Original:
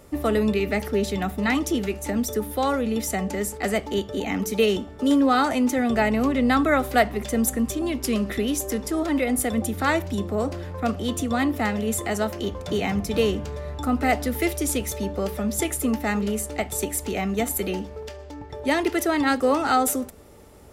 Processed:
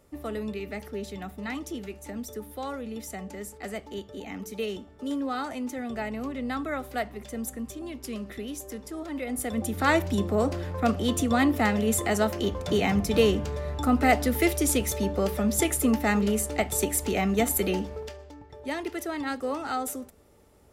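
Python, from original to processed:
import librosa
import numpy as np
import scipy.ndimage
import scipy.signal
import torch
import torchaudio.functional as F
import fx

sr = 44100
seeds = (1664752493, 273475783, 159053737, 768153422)

y = fx.gain(x, sr, db=fx.line((9.11, -11.5), (9.96, 0.5), (17.93, 0.5), (18.44, -10.0)))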